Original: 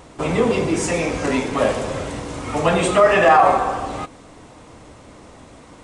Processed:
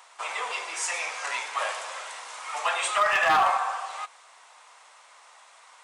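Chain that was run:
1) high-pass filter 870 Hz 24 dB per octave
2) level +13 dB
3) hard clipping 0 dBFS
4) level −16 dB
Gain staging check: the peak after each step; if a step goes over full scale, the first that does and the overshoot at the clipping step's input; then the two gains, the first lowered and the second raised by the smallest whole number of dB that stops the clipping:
−5.0, +8.0, 0.0, −16.0 dBFS
step 2, 8.0 dB
step 2 +5 dB, step 4 −8 dB

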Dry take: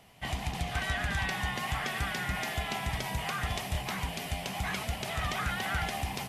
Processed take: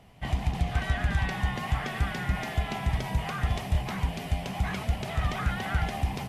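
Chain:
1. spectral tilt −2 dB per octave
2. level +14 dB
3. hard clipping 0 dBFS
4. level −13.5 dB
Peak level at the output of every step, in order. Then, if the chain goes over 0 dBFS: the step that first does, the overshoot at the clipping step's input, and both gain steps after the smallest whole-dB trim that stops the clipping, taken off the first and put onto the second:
−16.5, −2.5, −2.5, −16.0 dBFS
no step passes full scale

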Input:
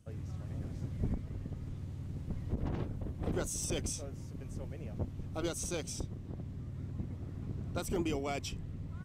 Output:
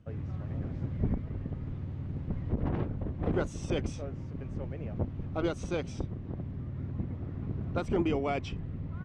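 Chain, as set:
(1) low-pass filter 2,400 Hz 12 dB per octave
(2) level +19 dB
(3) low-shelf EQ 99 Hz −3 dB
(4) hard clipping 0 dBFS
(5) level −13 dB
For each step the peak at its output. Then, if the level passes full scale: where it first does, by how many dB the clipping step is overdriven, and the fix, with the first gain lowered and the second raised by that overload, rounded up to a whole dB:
−22.5, −3.5, −4.0, −4.0, −17.0 dBFS
no step passes full scale

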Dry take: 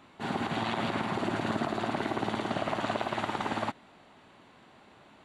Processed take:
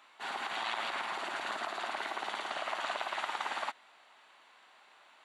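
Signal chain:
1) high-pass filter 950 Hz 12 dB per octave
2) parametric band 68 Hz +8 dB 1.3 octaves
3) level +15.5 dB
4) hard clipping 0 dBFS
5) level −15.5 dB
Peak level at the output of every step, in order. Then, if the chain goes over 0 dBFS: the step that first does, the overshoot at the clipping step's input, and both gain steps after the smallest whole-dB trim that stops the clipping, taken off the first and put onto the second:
−21.0, −21.0, −5.5, −5.5, −21.0 dBFS
no step passes full scale

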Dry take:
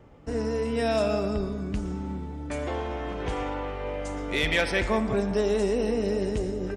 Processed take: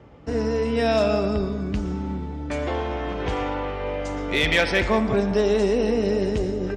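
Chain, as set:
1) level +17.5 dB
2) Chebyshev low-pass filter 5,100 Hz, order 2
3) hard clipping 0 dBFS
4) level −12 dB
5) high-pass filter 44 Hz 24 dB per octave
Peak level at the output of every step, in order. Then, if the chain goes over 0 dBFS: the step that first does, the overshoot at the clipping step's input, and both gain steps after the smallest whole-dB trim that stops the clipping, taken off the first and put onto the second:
+3.0, +3.0, 0.0, −12.0, −9.0 dBFS
step 1, 3.0 dB
step 1 +14.5 dB, step 4 −9 dB

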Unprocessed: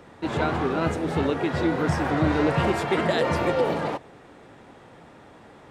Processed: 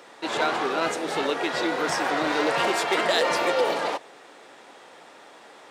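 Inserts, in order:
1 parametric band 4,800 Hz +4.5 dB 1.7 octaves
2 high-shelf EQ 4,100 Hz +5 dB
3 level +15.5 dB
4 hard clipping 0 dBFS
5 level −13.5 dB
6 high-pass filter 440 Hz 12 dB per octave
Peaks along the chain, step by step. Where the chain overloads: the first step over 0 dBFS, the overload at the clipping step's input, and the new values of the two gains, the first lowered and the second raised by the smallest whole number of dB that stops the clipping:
−10.0, −9.5, +6.0, 0.0, −13.5, −9.5 dBFS
step 3, 6.0 dB
step 3 +9.5 dB, step 5 −7.5 dB

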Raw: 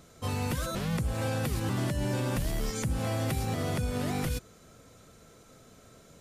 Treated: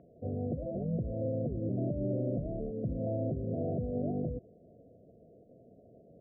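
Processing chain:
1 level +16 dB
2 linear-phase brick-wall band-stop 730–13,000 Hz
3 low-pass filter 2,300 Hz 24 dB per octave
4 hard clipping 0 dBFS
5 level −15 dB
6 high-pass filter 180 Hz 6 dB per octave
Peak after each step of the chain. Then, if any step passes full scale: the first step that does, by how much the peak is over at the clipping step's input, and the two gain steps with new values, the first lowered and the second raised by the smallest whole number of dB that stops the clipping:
−4.0, −5.0, −5.0, −5.0, −20.0, −22.0 dBFS
no step passes full scale

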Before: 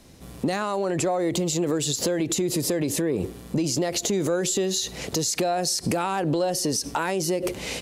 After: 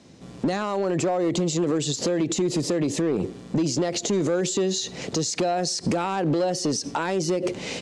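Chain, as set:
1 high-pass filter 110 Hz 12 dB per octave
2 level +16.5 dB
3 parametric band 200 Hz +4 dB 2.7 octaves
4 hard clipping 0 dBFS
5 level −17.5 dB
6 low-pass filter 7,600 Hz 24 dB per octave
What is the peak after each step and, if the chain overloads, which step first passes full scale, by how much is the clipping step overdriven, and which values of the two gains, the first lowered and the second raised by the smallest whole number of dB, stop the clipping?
−14.0, +2.5, +5.5, 0.0, −17.5, −16.5 dBFS
step 2, 5.5 dB
step 2 +10.5 dB, step 5 −11.5 dB

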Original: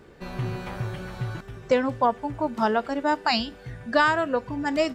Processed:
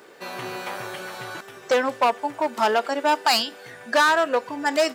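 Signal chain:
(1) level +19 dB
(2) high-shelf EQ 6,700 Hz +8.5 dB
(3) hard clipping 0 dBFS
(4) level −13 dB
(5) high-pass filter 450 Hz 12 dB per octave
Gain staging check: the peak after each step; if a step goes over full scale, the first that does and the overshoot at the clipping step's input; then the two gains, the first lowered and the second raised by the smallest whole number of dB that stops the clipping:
+8.5, +9.5, 0.0, −13.0, −7.0 dBFS
step 1, 9.5 dB
step 1 +9 dB, step 4 −3 dB

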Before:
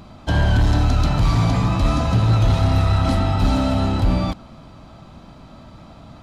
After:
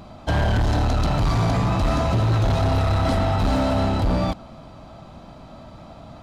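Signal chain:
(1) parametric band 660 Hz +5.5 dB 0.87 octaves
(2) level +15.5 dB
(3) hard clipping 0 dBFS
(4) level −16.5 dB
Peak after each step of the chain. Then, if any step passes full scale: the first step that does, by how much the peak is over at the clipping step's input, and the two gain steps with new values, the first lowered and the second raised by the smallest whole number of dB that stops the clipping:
−8.0, +7.5, 0.0, −16.5 dBFS
step 2, 7.5 dB
step 2 +7.5 dB, step 4 −8.5 dB

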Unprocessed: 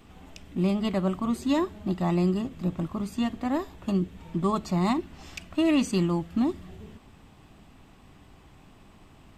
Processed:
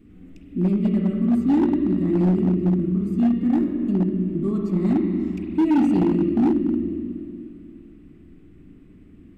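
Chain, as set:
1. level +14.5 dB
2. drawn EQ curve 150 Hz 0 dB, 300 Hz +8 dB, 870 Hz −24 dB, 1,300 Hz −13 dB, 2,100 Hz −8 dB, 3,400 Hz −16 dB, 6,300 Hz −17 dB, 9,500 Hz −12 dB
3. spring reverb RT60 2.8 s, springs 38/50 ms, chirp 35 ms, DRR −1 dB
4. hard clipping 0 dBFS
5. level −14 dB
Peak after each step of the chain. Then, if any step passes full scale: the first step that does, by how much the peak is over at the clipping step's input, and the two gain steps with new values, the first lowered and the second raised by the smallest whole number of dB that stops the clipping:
+1.5, +5.5, +8.5, 0.0, −14.0 dBFS
step 1, 8.5 dB
step 1 +5.5 dB, step 5 −5 dB

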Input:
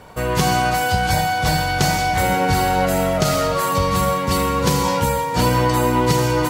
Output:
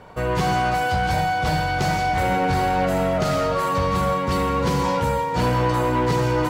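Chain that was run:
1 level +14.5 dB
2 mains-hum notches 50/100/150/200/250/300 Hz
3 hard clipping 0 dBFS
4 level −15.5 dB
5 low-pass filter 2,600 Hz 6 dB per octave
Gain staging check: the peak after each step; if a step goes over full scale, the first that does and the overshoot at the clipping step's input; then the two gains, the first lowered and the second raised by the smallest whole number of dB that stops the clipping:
+10.5, +10.0, 0.0, −15.5, −15.5 dBFS
step 1, 10.0 dB
step 1 +4.5 dB, step 4 −5.5 dB

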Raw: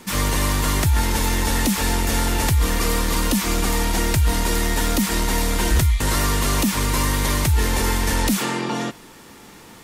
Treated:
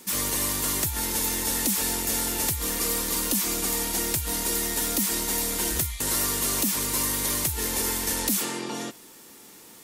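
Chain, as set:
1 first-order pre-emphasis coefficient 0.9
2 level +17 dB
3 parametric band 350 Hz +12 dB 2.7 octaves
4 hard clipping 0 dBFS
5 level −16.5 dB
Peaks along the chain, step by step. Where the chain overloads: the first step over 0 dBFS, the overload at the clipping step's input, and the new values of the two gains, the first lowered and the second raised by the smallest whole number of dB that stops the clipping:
−10.5, +6.5, +7.0, 0.0, −16.5 dBFS
step 2, 7.0 dB
step 2 +10 dB, step 5 −9.5 dB

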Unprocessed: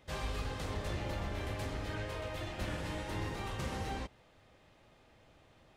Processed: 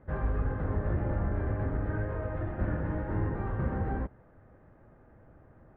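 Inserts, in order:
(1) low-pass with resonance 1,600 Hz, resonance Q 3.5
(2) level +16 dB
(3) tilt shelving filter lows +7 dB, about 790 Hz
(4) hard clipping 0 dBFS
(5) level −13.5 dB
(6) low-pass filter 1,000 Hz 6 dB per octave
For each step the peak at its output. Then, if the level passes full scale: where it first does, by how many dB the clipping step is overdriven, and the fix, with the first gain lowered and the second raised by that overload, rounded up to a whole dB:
−24.0, −8.0, −5.0, −5.0, −18.5, −19.0 dBFS
no step passes full scale

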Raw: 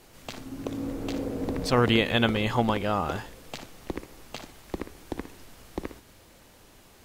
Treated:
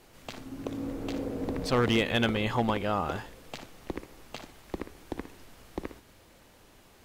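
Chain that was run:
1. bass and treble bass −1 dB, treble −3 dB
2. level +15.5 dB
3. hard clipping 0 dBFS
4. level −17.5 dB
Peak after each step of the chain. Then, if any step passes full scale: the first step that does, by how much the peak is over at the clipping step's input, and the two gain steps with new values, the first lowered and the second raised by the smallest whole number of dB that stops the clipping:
−6.5, +9.0, 0.0, −17.5 dBFS
step 2, 9.0 dB
step 2 +6.5 dB, step 4 −8.5 dB

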